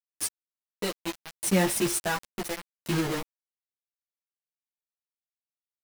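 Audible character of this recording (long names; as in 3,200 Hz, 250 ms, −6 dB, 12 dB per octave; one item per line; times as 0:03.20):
tremolo saw down 0.7 Hz, depth 100%
a quantiser's noise floor 6 bits, dither none
a shimmering, thickened sound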